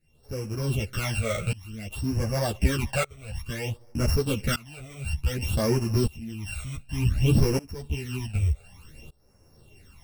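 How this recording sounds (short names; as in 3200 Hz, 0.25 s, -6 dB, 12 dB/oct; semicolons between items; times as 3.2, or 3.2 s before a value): a buzz of ramps at a fixed pitch in blocks of 16 samples; phasing stages 12, 0.56 Hz, lowest notch 280–3400 Hz; tremolo saw up 0.66 Hz, depth 95%; a shimmering, thickened sound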